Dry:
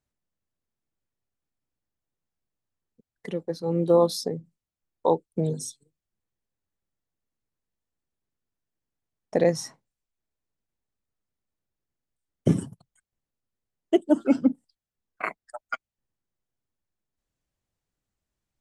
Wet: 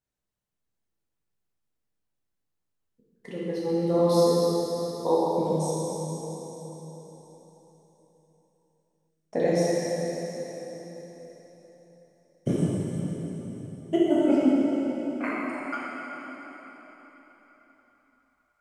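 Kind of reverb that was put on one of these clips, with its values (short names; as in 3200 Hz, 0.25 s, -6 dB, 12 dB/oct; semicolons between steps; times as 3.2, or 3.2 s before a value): plate-style reverb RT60 4.3 s, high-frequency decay 0.9×, DRR -8 dB; gain -7 dB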